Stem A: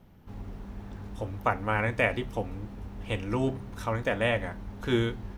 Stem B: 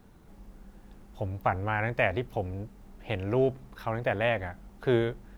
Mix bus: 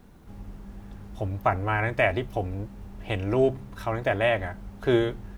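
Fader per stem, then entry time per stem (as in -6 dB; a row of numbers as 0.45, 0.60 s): -4.5, +2.5 dB; 0.00, 0.00 s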